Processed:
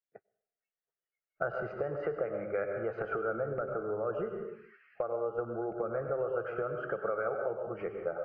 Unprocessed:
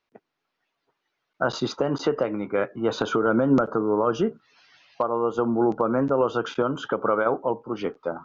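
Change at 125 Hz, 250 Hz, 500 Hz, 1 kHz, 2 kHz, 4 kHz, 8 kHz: −11.5 dB, −18.5 dB, −8.5 dB, −12.5 dB, −8.0 dB, below −25 dB, can't be measured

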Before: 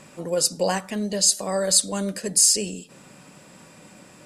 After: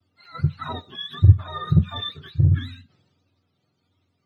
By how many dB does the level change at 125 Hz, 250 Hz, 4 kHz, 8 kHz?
+18.5 dB, 0.0 dB, −8.0 dB, below −40 dB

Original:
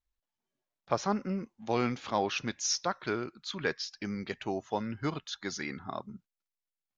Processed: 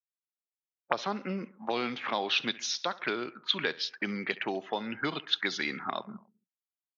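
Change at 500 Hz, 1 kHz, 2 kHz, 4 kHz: −1.0, 0.0, +5.5, +7.0 decibels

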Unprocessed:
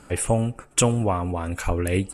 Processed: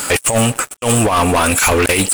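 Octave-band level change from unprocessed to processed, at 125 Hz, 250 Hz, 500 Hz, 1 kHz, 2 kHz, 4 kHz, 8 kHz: +4.5, +8.0, +9.0, +12.5, +17.0, +14.0, +12.0 decibels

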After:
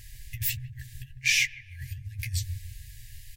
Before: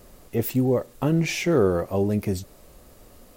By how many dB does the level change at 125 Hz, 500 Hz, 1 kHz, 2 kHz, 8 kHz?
−8.5 dB, below −40 dB, below −40 dB, +5.5 dB, +4.5 dB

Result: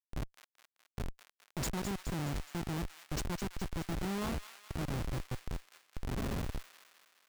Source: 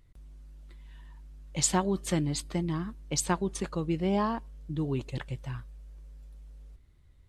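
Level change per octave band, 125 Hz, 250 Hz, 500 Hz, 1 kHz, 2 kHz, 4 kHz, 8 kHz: −5.0, −7.5, −9.0, −8.5, −3.0, −6.0, −12.5 decibels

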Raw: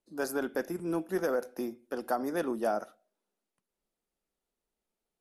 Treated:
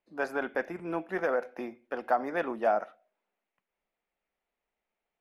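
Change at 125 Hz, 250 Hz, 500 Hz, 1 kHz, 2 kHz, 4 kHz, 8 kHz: −3.5 dB, −3.5 dB, +1.5 dB, +5.0 dB, +5.5 dB, can't be measured, below −10 dB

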